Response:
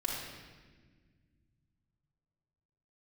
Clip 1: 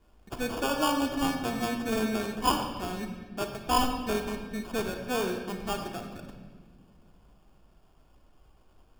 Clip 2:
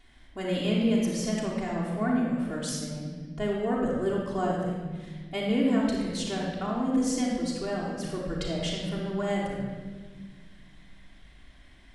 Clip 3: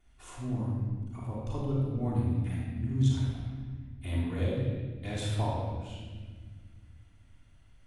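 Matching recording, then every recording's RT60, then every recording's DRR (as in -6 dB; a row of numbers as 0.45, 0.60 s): 2; not exponential, 1.5 s, 1.5 s; 3.5, -5.0, -12.5 dB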